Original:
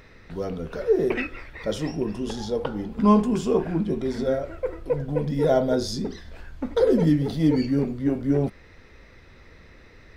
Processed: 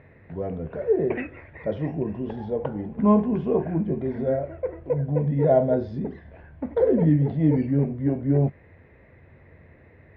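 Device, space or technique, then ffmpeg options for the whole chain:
bass cabinet: -af "highpass=73,equalizer=f=88:t=q:w=4:g=8,equalizer=f=140:t=q:w=4:g=7,equalizer=f=640:t=q:w=4:g=5,equalizer=f=1.3k:t=q:w=4:g=-10,lowpass=f=2.1k:w=0.5412,lowpass=f=2.1k:w=1.3066,highshelf=f=7.4k:g=5.5,volume=-1.5dB"

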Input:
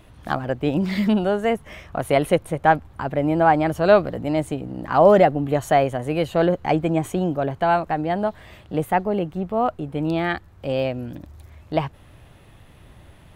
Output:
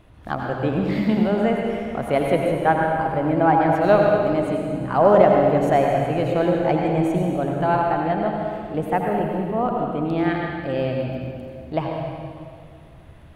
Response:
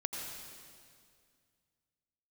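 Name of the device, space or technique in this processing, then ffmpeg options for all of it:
swimming-pool hall: -filter_complex "[1:a]atrim=start_sample=2205[a];[0:a][a]afir=irnorm=-1:irlink=0,highshelf=f=3.4k:g=-8,volume=-1dB"

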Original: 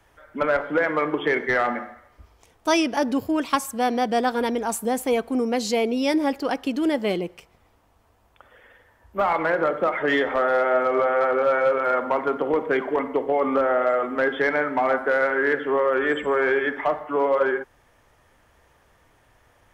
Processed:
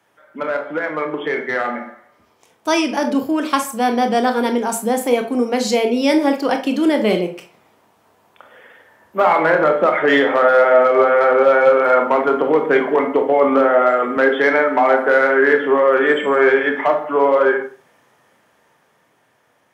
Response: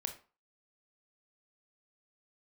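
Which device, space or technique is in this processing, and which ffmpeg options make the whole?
far laptop microphone: -filter_complex "[1:a]atrim=start_sample=2205[a];[0:a][a]afir=irnorm=-1:irlink=0,highpass=f=140:w=0.5412,highpass=f=140:w=1.3066,dynaudnorm=f=540:g=9:m=11dB,asettb=1/sr,asplit=3[b][c][d];[b]atrim=end=14.174[e];[c]atrim=start=14.17:end=15.05,asetpts=PTS-STARTPTS,afade=t=in:d=0.004:c=qsin,afade=t=out:st=0.876:d=0.004:c=qsin,highpass=180[f];[d]atrim=start=15.046[g];[e][f]acrossfade=d=0.004:c1=hsin:c2=qsin[h];[h][g]acrossfade=d=0.004:c1=qsin:c2=hsin"

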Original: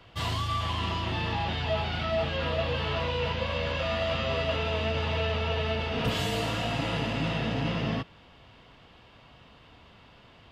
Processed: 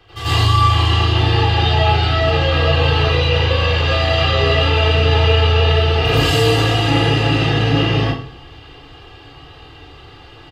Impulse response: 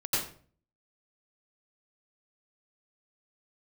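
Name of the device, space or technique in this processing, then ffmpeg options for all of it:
microphone above a desk: -filter_complex "[0:a]aecho=1:1:2.5:0.81[a];[1:a]atrim=start_sample=2205[b];[a][b]afir=irnorm=-1:irlink=0,volume=4dB"

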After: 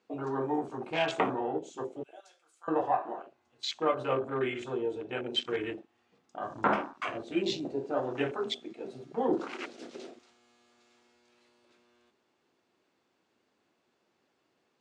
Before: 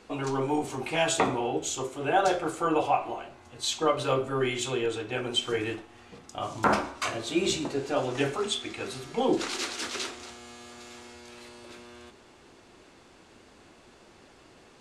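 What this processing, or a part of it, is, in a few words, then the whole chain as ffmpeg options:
over-cleaned archive recording: -filter_complex "[0:a]asettb=1/sr,asplit=3[a][b][c];[a]atrim=end=2.034[d];[b]atrim=start=2.03:end=2.68,asetpts=PTS-STARTPTS,afade=t=in:d=0.004:c=qsin,afade=t=out:st=0.646:d=0.004:c=qsin,aderivative[e];[c]atrim=start=2.676[f];[d][e]acrossfade=d=0.004:c1=hsin:c2=qsin[g];[g][f]acrossfade=d=0.004:c1=qsin:c2=hsin,highpass=150,lowpass=6.9k,afwtdn=0.02,volume=-3dB"

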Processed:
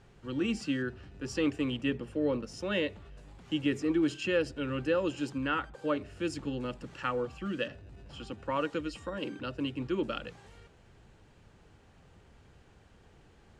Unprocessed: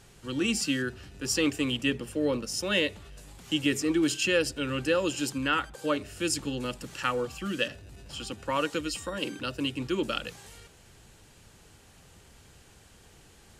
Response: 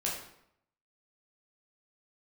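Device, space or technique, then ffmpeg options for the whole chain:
through cloth: -af "lowpass=9.1k,highshelf=f=3.7k:g=-17,volume=-2dB"

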